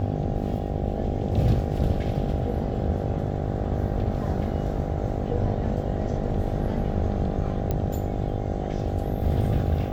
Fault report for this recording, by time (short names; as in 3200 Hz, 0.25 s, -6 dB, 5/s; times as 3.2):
buzz 50 Hz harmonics 16 -30 dBFS
7.71 pop -14 dBFS